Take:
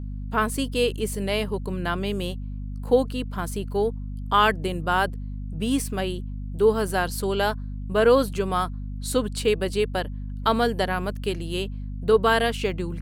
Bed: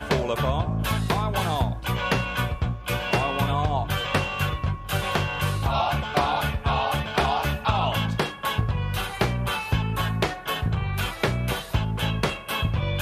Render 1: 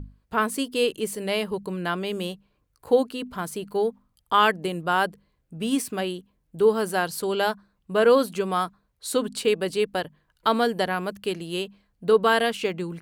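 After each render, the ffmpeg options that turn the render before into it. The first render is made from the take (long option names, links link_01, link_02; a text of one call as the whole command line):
ffmpeg -i in.wav -af "bandreject=frequency=50:width_type=h:width=6,bandreject=frequency=100:width_type=h:width=6,bandreject=frequency=150:width_type=h:width=6,bandreject=frequency=200:width_type=h:width=6,bandreject=frequency=250:width_type=h:width=6" out.wav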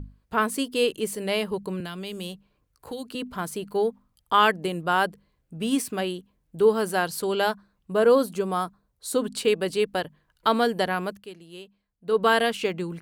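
ffmpeg -i in.wav -filter_complex "[0:a]asettb=1/sr,asplit=3[link_01][link_02][link_03];[link_01]atrim=end=1.804[link_04];[link_02]atrim=start=1.8:end=3.15,asetpts=PTS-STARTPTS,afade=type=in:duration=0.004:curve=qsin,afade=type=out:start_time=1.346:duration=0.004:curve=qsin,acrossover=split=170|3000[link_05][link_06][link_07];[link_06]acompressor=threshold=-35dB:ratio=6:attack=3.2:release=140:knee=2.83:detection=peak[link_08];[link_05][link_08][link_07]amix=inputs=3:normalize=0[link_09];[link_03]atrim=start=3.146[link_10];[link_04][link_09]acrossfade=duration=0.004:curve1=hsin:curve2=qsin[link_11];[link_11][link_10]acrossfade=duration=0.004:curve1=qsin:curve2=hsin,asettb=1/sr,asplit=3[link_12][link_13][link_14];[link_12]atrim=end=7.924[link_15];[link_13]atrim=start=7.92:end=9.22,asetpts=PTS-STARTPTS,afade=type=in:duration=0.004:curve=qsin,afade=type=out:start_time=1.296:duration=0.004:curve=qsin,equalizer=frequency=2500:width_type=o:width=1.8:gain=-6.5[link_16];[link_14]atrim=start=9.216[link_17];[link_15][link_16]acrossfade=duration=0.004:curve1=hsin:curve2=qsin[link_18];[link_18][link_17]acrossfade=duration=0.004:curve1=qsin:curve2=hsin,asplit=3[link_19][link_20][link_21];[link_19]atrim=end=11.26,asetpts=PTS-STARTPTS,afade=type=out:start_time=11.06:duration=0.2:silence=0.211349[link_22];[link_20]atrim=start=11.26:end=12.04,asetpts=PTS-STARTPTS,volume=-13.5dB[link_23];[link_21]atrim=start=12.04,asetpts=PTS-STARTPTS,afade=type=in:duration=0.2:silence=0.211349[link_24];[link_22][link_23][link_24]concat=n=3:v=0:a=1" out.wav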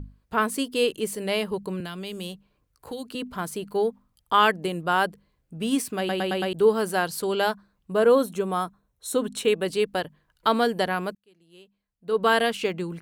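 ffmpeg -i in.wav -filter_complex "[0:a]asettb=1/sr,asplit=3[link_01][link_02][link_03];[link_01]atrim=end=8.044[link_04];[link_02]atrim=start=8.04:end=9.65,asetpts=PTS-STARTPTS,afade=type=in:duration=0.004:curve=qsin,afade=type=out:start_time=1.606:duration=0.004:curve=qsin,asuperstop=centerf=4700:order=8:qfactor=7.1[link_05];[link_03]atrim=start=9.646[link_06];[link_04][link_05]acrossfade=duration=0.004:curve1=hsin:curve2=qsin[link_07];[link_07][link_06]acrossfade=duration=0.004:curve1=qsin:curve2=hsin,asplit=7[link_08][link_09][link_10][link_11][link_12][link_13][link_14];[link_08]atrim=end=6.092[link_15];[link_09]atrim=start=5.978:end=6.092[link_16];[link_10]atrim=start=5.978:end=6.092[link_17];[link_11]atrim=start=5.978:end=6.092[link_18];[link_12]atrim=start=5.978:end=6.092[link_19];[link_13]atrim=start=6.528:end=11.15,asetpts=PTS-STARTPTS,afade=type=out:start_time=4.618:duration=0.004:curve=hsin[link_20];[link_14]atrim=start=11.15,asetpts=PTS-STARTPTS,afade=type=in:duration=1.19[link_21];[link_15][link_16]acrossfade=duration=0.004:curve1=hsin:curve2=hsin[link_22];[link_22][link_17]acrossfade=duration=0.004:curve1=hsin:curve2=hsin[link_23];[link_23][link_18]acrossfade=duration=0.004:curve1=hsin:curve2=hsin[link_24];[link_24][link_19]acrossfade=duration=0.004:curve1=hsin:curve2=hsin[link_25];[link_20][link_21]concat=n=2:v=0:a=1[link_26];[link_25][link_26]acrossfade=duration=0.004:curve1=hsin:curve2=hsin" out.wav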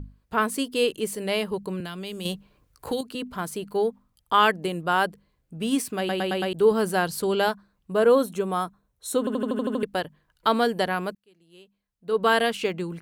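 ffmpeg -i in.wav -filter_complex "[0:a]asettb=1/sr,asplit=3[link_01][link_02][link_03];[link_01]atrim=end=2.254[link_04];[link_02]atrim=start=2.25:end=3.01,asetpts=PTS-STARTPTS,afade=type=in:duration=0.004:curve=qsin,afade=type=out:start_time=0.756:duration=0.004:curve=qsin,acontrast=89[link_05];[link_03]atrim=start=3.006[link_06];[link_04][link_05]acrossfade=duration=0.004:curve1=hsin:curve2=qsin[link_07];[link_07][link_06]acrossfade=duration=0.004:curve1=qsin:curve2=hsin,asettb=1/sr,asplit=3[link_08][link_09][link_10];[link_08]atrim=end=6.714[link_11];[link_09]atrim=start=6.71:end=7.49,asetpts=PTS-STARTPTS,afade=type=in:duration=0.004:curve=qsin,afade=type=out:start_time=0.776:duration=0.004:curve=qsin,lowshelf=frequency=220:gain=7[link_12];[link_10]atrim=start=7.486[link_13];[link_11][link_12]acrossfade=duration=0.004:curve1=hsin:curve2=qsin[link_14];[link_14][link_13]acrossfade=duration=0.004:curve1=qsin:curve2=hsin,asplit=9[link_15][link_16][link_17][link_18][link_19][link_20][link_21][link_22][link_23];[link_15]atrim=end=9.272[link_24];[link_16]atrim=start=9.188:end=9.272[link_25];[link_17]atrim=start=9.188:end=9.272[link_26];[link_18]atrim=start=9.188:end=9.272[link_27];[link_19]atrim=start=9.188:end=9.272[link_28];[link_20]atrim=start=9.188:end=9.272[link_29];[link_21]atrim=start=9.188:end=9.272[link_30];[link_22]atrim=start=9.188:end=9.272[link_31];[link_23]atrim=start=9.828[link_32];[link_24][link_25]acrossfade=duration=0.004:curve1=hsin:curve2=hsin[link_33];[link_33][link_26]acrossfade=duration=0.004:curve1=hsin:curve2=hsin[link_34];[link_34][link_27]acrossfade=duration=0.004:curve1=hsin:curve2=hsin[link_35];[link_35][link_28]acrossfade=duration=0.004:curve1=hsin:curve2=hsin[link_36];[link_36][link_29]acrossfade=duration=0.004:curve1=hsin:curve2=hsin[link_37];[link_37][link_30]acrossfade=duration=0.004:curve1=hsin:curve2=hsin[link_38];[link_38][link_31]acrossfade=duration=0.004:curve1=hsin:curve2=hsin[link_39];[link_39][link_32]acrossfade=duration=0.004:curve1=hsin:curve2=hsin" out.wav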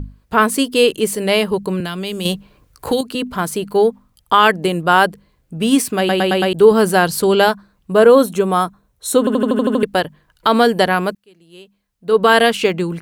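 ffmpeg -i in.wav -af "alimiter=level_in=10.5dB:limit=-1dB:release=50:level=0:latency=1" out.wav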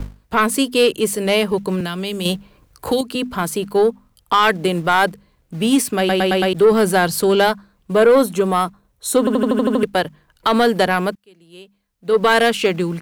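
ffmpeg -i in.wav -filter_complex "[0:a]acrossover=split=150|770|5600[link_01][link_02][link_03][link_04];[link_01]acrusher=bits=3:mode=log:mix=0:aa=0.000001[link_05];[link_05][link_02][link_03][link_04]amix=inputs=4:normalize=0,asoftclip=type=tanh:threshold=-6dB" out.wav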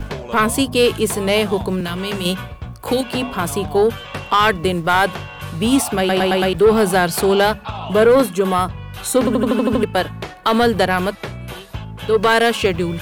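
ffmpeg -i in.wav -i bed.wav -filter_complex "[1:a]volume=-5dB[link_01];[0:a][link_01]amix=inputs=2:normalize=0" out.wav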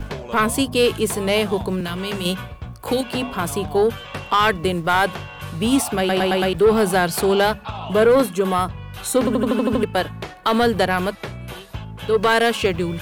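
ffmpeg -i in.wav -af "volume=-2.5dB" out.wav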